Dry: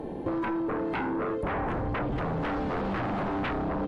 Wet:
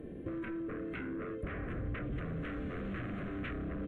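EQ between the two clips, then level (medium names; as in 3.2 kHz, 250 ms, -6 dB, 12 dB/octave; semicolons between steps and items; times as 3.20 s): peaking EQ 66 Hz +4.5 dB 1.3 oct; static phaser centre 2.1 kHz, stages 4; -7.5 dB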